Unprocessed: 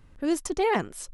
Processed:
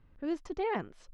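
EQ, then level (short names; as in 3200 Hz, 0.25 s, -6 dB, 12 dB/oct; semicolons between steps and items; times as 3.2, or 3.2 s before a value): air absorption 210 m; -7.5 dB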